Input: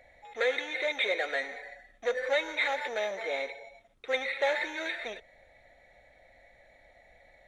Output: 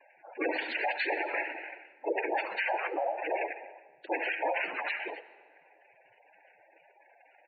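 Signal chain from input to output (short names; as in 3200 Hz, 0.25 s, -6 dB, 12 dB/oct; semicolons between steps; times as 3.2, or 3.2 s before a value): dynamic EQ 280 Hz, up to -5 dB, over -51 dBFS, Q 2.5; noise vocoder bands 8; LPF 6000 Hz 24 dB/oct; low shelf 150 Hz -6 dB; feedback echo 68 ms, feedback 17%, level -13.5 dB; in parallel at -6 dB: crossover distortion -53.5 dBFS; on the sum: spectral gate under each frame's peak -10 dB strong; on a send at -17.5 dB: reverb RT60 1.8 s, pre-delay 45 ms; on the sum: limiter -21 dBFS, peak gain reduction 8.5 dB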